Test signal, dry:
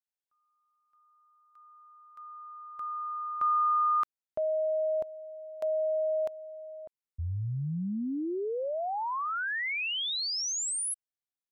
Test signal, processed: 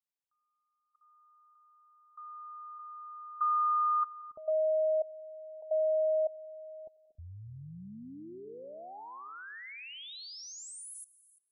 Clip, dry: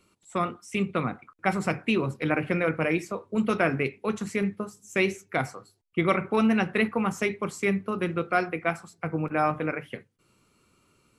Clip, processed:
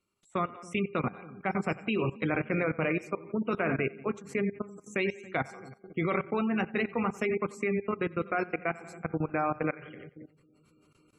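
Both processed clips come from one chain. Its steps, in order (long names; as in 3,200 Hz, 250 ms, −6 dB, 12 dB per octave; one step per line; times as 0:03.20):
tuned comb filter 400 Hz, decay 0.76 s, mix 60%
echo with a time of its own for lows and highs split 400 Hz, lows 277 ms, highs 91 ms, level −11.5 dB
output level in coarse steps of 18 dB
gate on every frequency bin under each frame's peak −30 dB strong
level +8 dB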